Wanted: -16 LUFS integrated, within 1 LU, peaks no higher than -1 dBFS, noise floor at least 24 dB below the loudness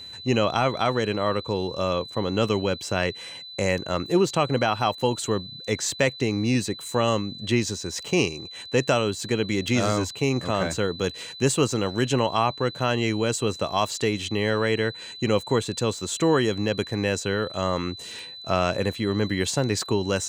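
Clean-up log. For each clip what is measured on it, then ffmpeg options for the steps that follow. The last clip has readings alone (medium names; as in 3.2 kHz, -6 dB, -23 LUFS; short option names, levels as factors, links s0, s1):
steady tone 4 kHz; tone level -38 dBFS; loudness -25.0 LUFS; peak level -8.0 dBFS; loudness target -16.0 LUFS
-> -af "bandreject=f=4000:w=30"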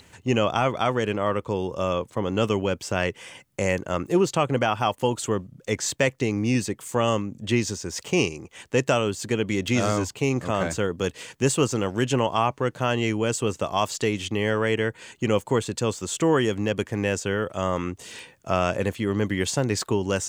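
steady tone not found; loudness -25.0 LUFS; peak level -8.0 dBFS; loudness target -16.0 LUFS
-> -af "volume=2.82,alimiter=limit=0.891:level=0:latency=1"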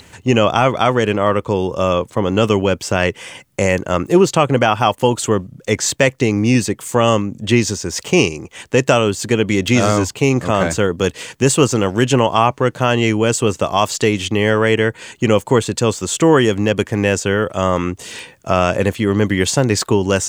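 loudness -16.5 LUFS; peak level -1.0 dBFS; noise floor -46 dBFS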